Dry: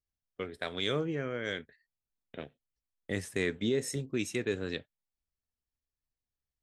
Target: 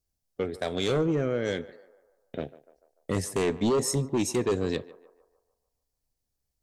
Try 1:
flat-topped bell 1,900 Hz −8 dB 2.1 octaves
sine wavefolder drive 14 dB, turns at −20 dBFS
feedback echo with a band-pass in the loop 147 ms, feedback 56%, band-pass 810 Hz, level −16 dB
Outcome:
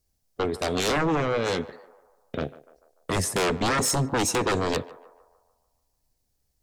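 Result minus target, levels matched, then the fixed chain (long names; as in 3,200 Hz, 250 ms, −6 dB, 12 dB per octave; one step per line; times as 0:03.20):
sine wavefolder: distortion +17 dB
flat-topped bell 1,900 Hz −8 dB 2.1 octaves
sine wavefolder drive 6 dB, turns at −20 dBFS
feedback echo with a band-pass in the loop 147 ms, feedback 56%, band-pass 810 Hz, level −16 dB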